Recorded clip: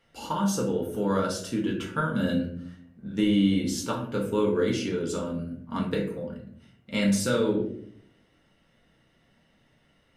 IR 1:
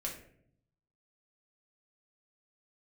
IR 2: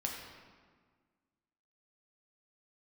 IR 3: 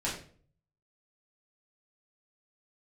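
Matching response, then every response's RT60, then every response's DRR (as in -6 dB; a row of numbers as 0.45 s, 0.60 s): 1; 0.65 s, 1.6 s, 0.45 s; -2.5 dB, -1.0 dB, -7.0 dB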